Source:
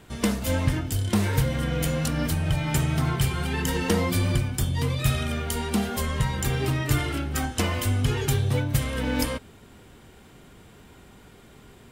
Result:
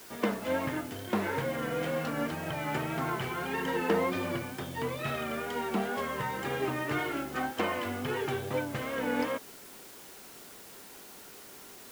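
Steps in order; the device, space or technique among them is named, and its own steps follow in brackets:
wax cylinder (band-pass filter 320–2,000 Hz; tape wow and flutter; white noise bed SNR 17 dB)

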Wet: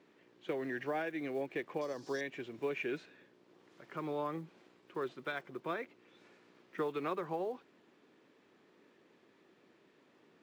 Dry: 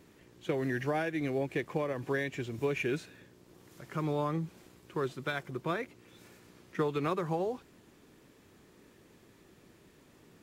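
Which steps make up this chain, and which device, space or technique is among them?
0:01.81–0:02.21: high shelf with overshoot 3,600 Hz +13.5 dB, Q 3
early digital voice recorder (band-pass filter 260–3,800 Hz; one scale factor per block 7 bits)
level −4 dB

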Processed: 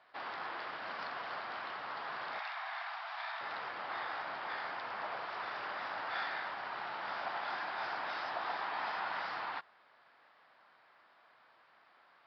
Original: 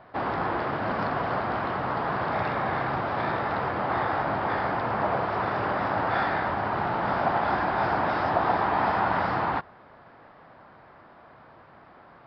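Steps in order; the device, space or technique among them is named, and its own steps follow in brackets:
0:02.39–0:03.41: Chebyshev high-pass filter 650 Hz, order 6
piezo pickup straight into a mixer (low-pass filter 5,000 Hz 12 dB per octave; first difference)
level +3.5 dB

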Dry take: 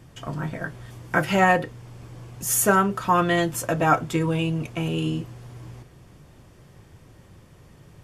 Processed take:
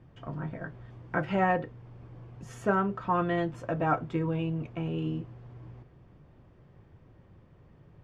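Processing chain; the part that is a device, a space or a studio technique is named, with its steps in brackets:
phone in a pocket (low-pass filter 3,600 Hz 12 dB per octave; high-shelf EQ 2,100 Hz −10.5 dB)
level −6 dB

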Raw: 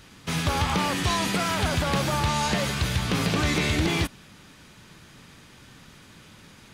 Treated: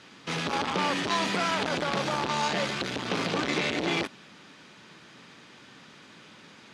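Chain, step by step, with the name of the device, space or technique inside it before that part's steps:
public-address speaker with an overloaded transformer (saturating transformer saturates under 430 Hz; band-pass filter 220–5,500 Hz)
level +1 dB

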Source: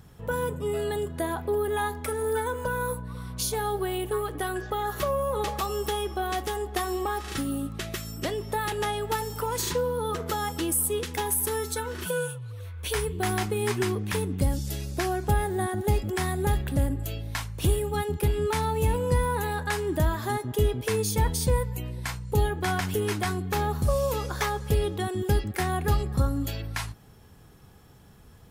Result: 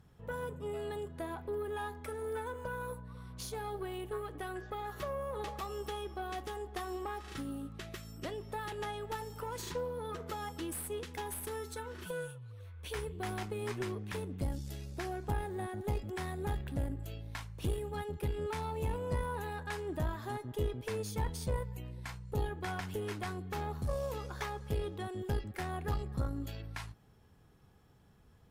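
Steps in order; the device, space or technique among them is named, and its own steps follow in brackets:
tube preamp driven hard (tube saturation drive 16 dB, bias 0.6; high-shelf EQ 5,700 Hz −7.5 dB)
level −7.5 dB

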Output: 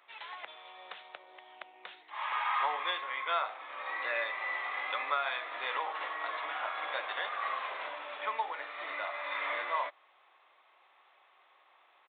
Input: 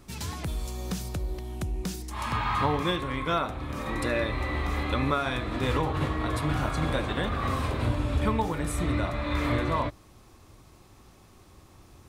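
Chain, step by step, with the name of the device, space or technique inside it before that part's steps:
musical greeting card (downsampling to 8,000 Hz; high-pass filter 660 Hz 24 dB per octave; parametric band 2,000 Hz +5 dB 0.3 octaves)
level −3 dB

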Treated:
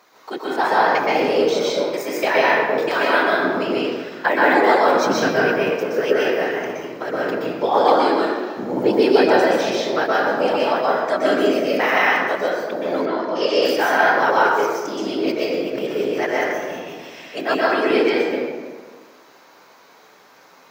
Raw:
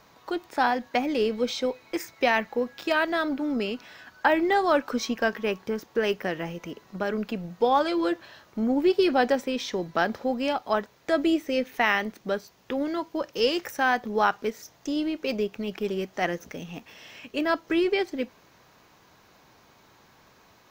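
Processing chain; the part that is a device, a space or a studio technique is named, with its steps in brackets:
whispering ghost (random phases in short frames; high-pass filter 340 Hz 12 dB per octave; convolution reverb RT60 1.5 s, pre-delay 117 ms, DRR −6 dB)
0:05.06–0:05.70: bass and treble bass +8 dB, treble 0 dB
0:13.05–0:13.61: low-pass filter 3,900 Hz → 6,600 Hz 12 dB per octave
parametric band 2,900 Hz −3 dB 0.37 octaves
level +2.5 dB

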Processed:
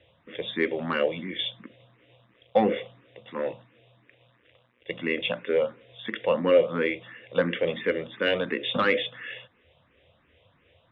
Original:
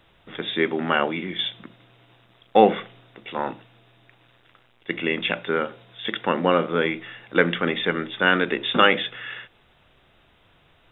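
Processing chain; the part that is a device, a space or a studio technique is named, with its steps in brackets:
barber-pole phaser into a guitar amplifier (frequency shifter mixed with the dry sound +2.9 Hz; soft clipping −11.5 dBFS, distortion −17 dB; loudspeaker in its box 78–3,500 Hz, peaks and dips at 84 Hz +8 dB, 180 Hz −3 dB, 370 Hz −5 dB, 520 Hz +9 dB, 810 Hz −7 dB, 1,400 Hz −8 dB)

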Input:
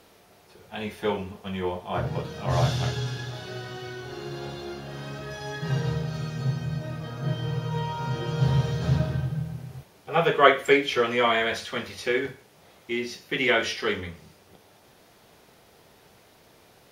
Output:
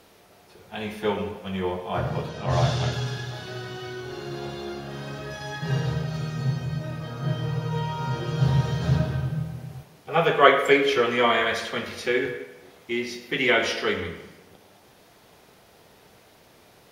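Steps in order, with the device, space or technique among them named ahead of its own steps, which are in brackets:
0:02.29–0:02.92: low-pass filter 8,400 Hz 12 dB per octave
filtered reverb send (on a send: high-pass filter 170 Hz 24 dB per octave + low-pass filter 3,200 Hz + convolution reverb RT60 0.95 s, pre-delay 57 ms, DRR 7.5 dB)
on the sum: level +1 dB

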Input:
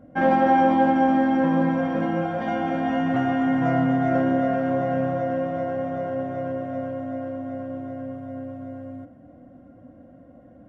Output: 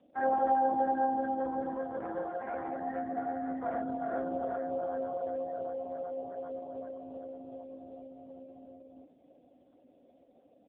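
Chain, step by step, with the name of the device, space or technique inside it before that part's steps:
gate on every frequency bin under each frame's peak −20 dB strong
0:00.69–0:02.24: mains-hum notches 60/120/180/240/300/360 Hz
satellite phone (band-pass filter 390–3,200 Hz; single-tap delay 499 ms −19 dB; level −7 dB; AMR narrowband 5.15 kbit/s 8,000 Hz)

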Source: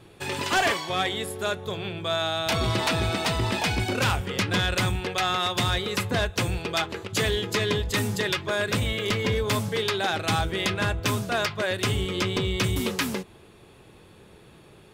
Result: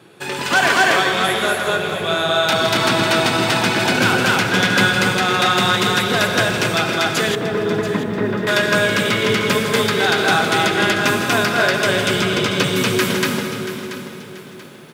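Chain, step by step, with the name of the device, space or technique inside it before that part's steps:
stadium PA (high-pass filter 140 Hz 24 dB per octave; parametric band 1,500 Hz +6.5 dB 0.26 octaves; loudspeakers that aren't time-aligned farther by 56 metres −9 dB, 82 metres 0 dB; convolution reverb RT60 2.7 s, pre-delay 64 ms, DRR 5 dB)
0:07.35–0:08.47: Bessel low-pass filter 890 Hz, order 2
feedback echo at a low word length 683 ms, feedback 35%, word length 8 bits, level −12.5 dB
level +4.5 dB

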